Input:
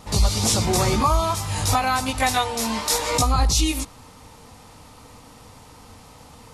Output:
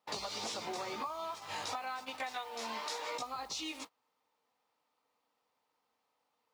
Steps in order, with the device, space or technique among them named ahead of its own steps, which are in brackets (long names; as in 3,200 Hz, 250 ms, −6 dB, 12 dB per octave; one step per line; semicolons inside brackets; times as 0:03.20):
baby monitor (band-pass filter 450–4,300 Hz; downward compressor 12 to 1, threshold −33 dBFS, peak gain reduction 17.5 dB; white noise bed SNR 23 dB; noise gate −41 dBFS, range −28 dB)
level −3.5 dB